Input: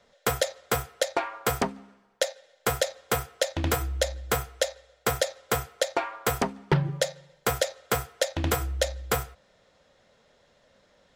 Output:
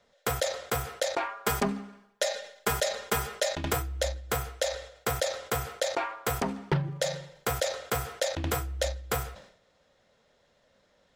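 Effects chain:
0:01.28–0:03.73: comb filter 4.9 ms, depth 74%
level that may fall only so fast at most 90 dB per second
level −4.5 dB

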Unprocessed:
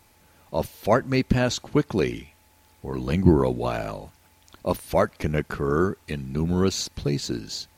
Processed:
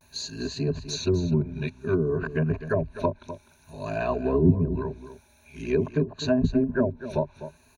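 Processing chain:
played backwards from end to start
treble cut that deepens with the level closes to 380 Hz, closed at −17 dBFS
EQ curve with evenly spaced ripples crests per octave 1.5, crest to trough 15 dB
pitch vibrato 0.53 Hz 54 cents
on a send: single-tap delay 252 ms −12.5 dB
on the sum: level −3.5 dB

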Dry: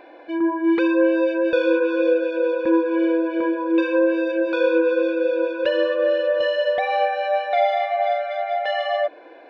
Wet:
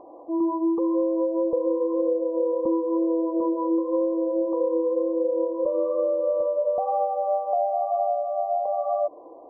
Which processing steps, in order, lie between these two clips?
downward compressor, threshold −20 dBFS, peak gain reduction 7.5 dB
background noise white −61 dBFS
linear-phase brick-wall low-pass 1,200 Hz

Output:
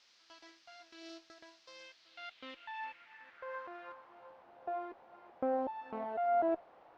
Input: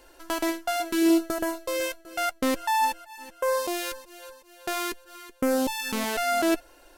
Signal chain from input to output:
harmonic generator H 4 −14 dB, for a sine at −12 dBFS
background noise white −40 dBFS
spectral tilt −2 dB per octave
band-pass filter sweep 5,200 Hz → 750 Hz, 0:01.82–0:04.45
high-frequency loss of the air 220 metres
level −4.5 dB

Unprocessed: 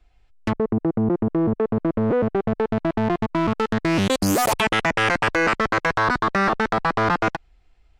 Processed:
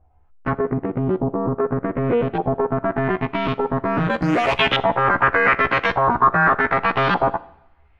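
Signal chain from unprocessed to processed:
every overlapping window played backwards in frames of 33 ms
auto-filter low-pass saw up 0.84 Hz 770–3,600 Hz
coupled-rooms reverb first 0.72 s, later 1.8 s, from −21 dB, DRR 15.5 dB
level +3.5 dB

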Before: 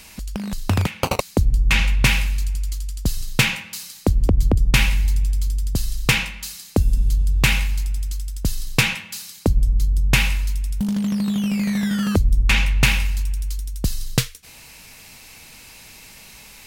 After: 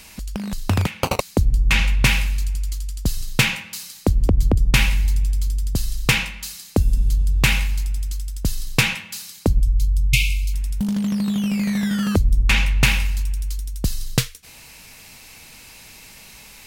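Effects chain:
0:09.60–0:10.54: linear-phase brick-wall band-stop 160–2,100 Hz

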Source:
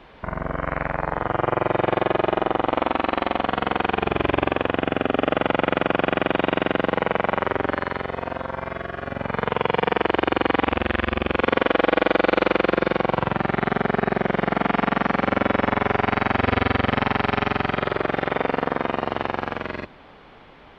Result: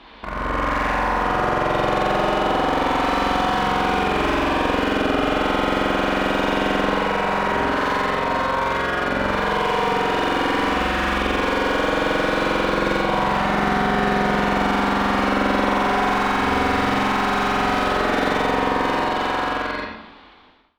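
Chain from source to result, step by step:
fade-out on the ending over 2.33 s
graphic EQ with 10 bands 125 Hz −11 dB, 250 Hz +6 dB, 500 Hz −5 dB, 1,000 Hz +5 dB, 4,000 Hz +11 dB
convolution reverb RT60 0.75 s, pre-delay 18 ms, DRR 0 dB
downward compressor, threshold −18 dBFS, peak gain reduction 8 dB
asymmetric clip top −26.5 dBFS, bottom −9.5 dBFS
automatic gain control gain up to 10 dB
slew-rate limiting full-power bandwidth 210 Hz
level −1.5 dB

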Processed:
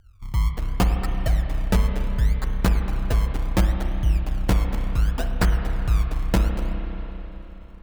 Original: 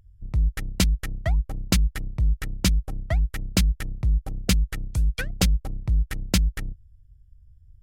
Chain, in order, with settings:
sample-and-hold swept by an LFO 28×, swing 100% 0.69 Hz
spring reverb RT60 3.7 s, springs 31/53 ms, chirp 80 ms, DRR 3.5 dB

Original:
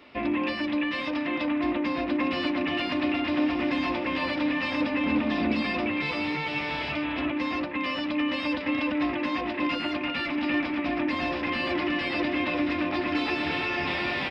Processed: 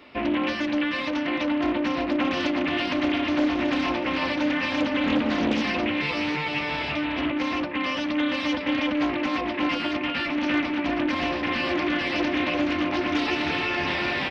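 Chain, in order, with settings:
highs frequency-modulated by the lows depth 0.4 ms
level +2.5 dB

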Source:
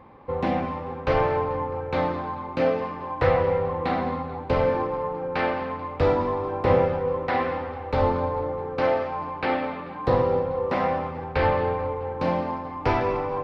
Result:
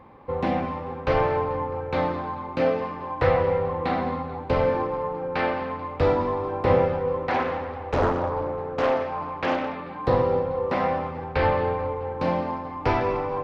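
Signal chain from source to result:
0:07.30–0:09.75: highs frequency-modulated by the lows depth 0.97 ms

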